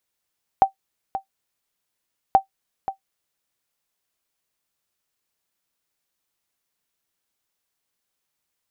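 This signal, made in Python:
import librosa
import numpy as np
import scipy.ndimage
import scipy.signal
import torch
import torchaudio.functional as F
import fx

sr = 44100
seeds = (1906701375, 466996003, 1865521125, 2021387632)

y = fx.sonar_ping(sr, hz=776.0, decay_s=0.11, every_s=1.73, pings=2, echo_s=0.53, echo_db=-12.5, level_db=-4.5)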